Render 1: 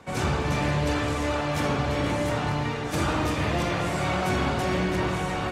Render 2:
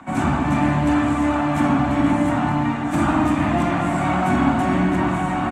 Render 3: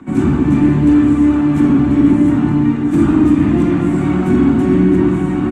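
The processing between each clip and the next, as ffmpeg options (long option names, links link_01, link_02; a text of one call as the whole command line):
ffmpeg -i in.wav -filter_complex "[0:a]firequalizer=gain_entry='entry(110,0);entry(270,14);entry(450,-12);entry(670,7);entry(5000,-12);entry(7800,1);entry(11000,-6)':delay=0.05:min_phase=1,acrossover=split=150|710|4400[link_01][link_02][link_03][link_04];[link_03]acompressor=mode=upward:threshold=-47dB:ratio=2.5[link_05];[link_01][link_02][link_05][link_04]amix=inputs=4:normalize=0,volume=1.5dB" out.wav
ffmpeg -i in.wav -af "apsyclip=12dB,lowshelf=frequency=510:width_type=q:width=3:gain=8.5,volume=-14.5dB" out.wav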